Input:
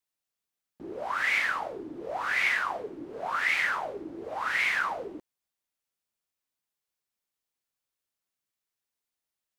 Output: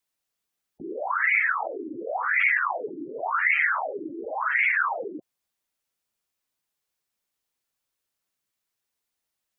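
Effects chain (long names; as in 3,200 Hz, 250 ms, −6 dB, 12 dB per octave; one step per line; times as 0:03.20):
gate on every frequency bin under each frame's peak −15 dB strong
0:01.66–0:02.23: Butterworth low-pass 1,400 Hz
level +5 dB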